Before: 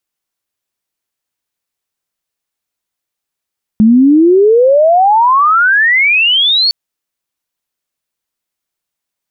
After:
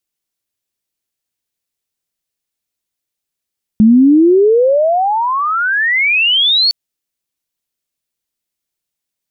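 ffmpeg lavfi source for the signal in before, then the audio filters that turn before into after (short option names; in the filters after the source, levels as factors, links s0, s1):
-f lavfi -i "aevalsrc='pow(10,(-3-4.5*t/2.91)/20)*sin(2*PI*210*2.91/log(4500/210)*(exp(log(4500/210)*t/2.91)-1))':d=2.91:s=44100"
-af "equalizer=f=1100:t=o:w=1.9:g=-7"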